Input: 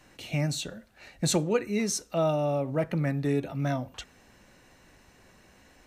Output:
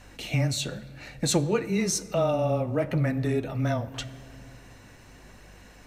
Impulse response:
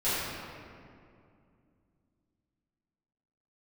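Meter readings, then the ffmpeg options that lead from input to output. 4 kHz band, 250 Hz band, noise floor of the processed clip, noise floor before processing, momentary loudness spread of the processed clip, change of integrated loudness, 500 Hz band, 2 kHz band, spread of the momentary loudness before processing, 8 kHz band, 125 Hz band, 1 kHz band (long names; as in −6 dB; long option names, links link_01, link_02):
+3.0 dB, +1.5 dB, −51 dBFS, −59 dBFS, 15 LU, +1.5 dB, +1.5 dB, +2.5 dB, 9 LU, +2.5 dB, +3.0 dB, +1.0 dB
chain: -filter_complex "[0:a]afreqshift=-13,acompressor=threshold=-33dB:ratio=1.5,aeval=exprs='val(0)+0.00141*(sin(2*PI*50*n/s)+sin(2*PI*2*50*n/s)/2+sin(2*PI*3*50*n/s)/3+sin(2*PI*4*50*n/s)/4+sin(2*PI*5*50*n/s)/5)':channel_layout=same,flanger=delay=1.1:depth=9.8:regen=-45:speed=0.91:shape=triangular,asplit=2[link_01][link_02];[1:a]atrim=start_sample=2205[link_03];[link_02][link_03]afir=irnorm=-1:irlink=0,volume=-26.5dB[link_04];[link_01][link_04]amix=inputs=2:normalize=0,volume=9dB"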